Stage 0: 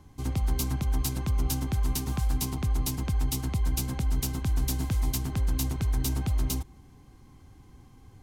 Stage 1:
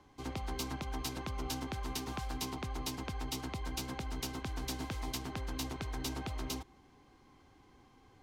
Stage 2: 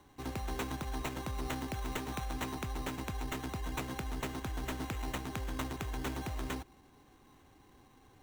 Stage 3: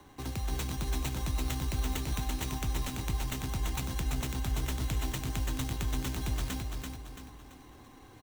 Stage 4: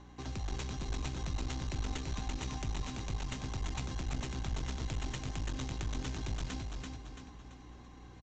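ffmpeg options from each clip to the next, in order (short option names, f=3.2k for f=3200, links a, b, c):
-filter_complex "[0:a]acrossover=split=290 5600:gain=0.2 1 0.224[a][b][c];[a][b][c]amix=inputs=3:normalize=0,volume=-1dB"
-af "acrusher=samples=9:mix=1:aa=0.000001,volume=1dB"
-filter_complex "[0:a]acrossover=split=190|3000[a][b][c];[b]acompressor=threshold=-49dB:ratio=5[d];[a][d][c]amix=inputs=3:normalize=0,asplit=2[e][f];[f]aecho=0:1:336|672|1008|1344|1680:0.631|0.259|0.106|0.0435|0.0178[g];[e][g]amix=inputs=2:normalize=0,volume=6dB"
-af "aresample=16000,aeval=exprs='clip(val(0),-1,0.015)':c=same,aresample=44100,aeval=exprs='val(0)+0.00282*(sin(2*PI*60*n/s)+sin(2*PI*2*60*n/s)/2+sin(2*PI*3*60*n/s)/3+sin(2*PI*4*60*n/s)/4+sin(2*PI*5*60*n/s)/5)':c=same,volume=-2.5dB"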